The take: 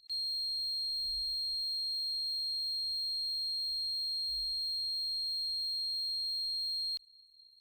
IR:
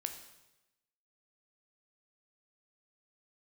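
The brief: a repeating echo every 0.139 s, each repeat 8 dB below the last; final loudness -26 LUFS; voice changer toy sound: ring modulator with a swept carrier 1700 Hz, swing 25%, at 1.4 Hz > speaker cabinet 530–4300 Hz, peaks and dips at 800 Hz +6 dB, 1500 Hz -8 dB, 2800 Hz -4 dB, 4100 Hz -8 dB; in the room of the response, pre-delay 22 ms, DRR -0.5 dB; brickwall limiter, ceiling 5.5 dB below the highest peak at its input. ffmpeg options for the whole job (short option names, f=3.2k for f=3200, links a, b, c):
-filter_complex "[0:a]alimiter=level_in=12.5dB:limit=-24dB:level=0:latency=1,volume=-12.5dB,aecho=1:1:139|278|417|556|695:0.398|0.159|0.0637|0.0255|0.0102,asplit=2[a][b];[1:a]atrim=start_sample=2205,adelay=22[c];[b][c]afir=irnorm=-1:irlink=0,volume=1dB[d];[a][d]amix=inputs=2:normalize=0,aeval=exprs='val(0)*sin(2*PI*1700*n/s+1700*0.25/1.4*sin(2*PI*1.4*n/s))':c=same,highpass=530,equalizer=f=800:t=q:w=4:g=6,equalizer=f=1.5k:t=q:w=4:g=-8,equalizer=f=2.8k:t=q:w=4:g=-4,equalizer=f=4.1k:t=q:w=4:g=-8,lowpass=f=4.3k:w=0.5412,lowpass=f=4.3k:w=1.3066,volume=16dB"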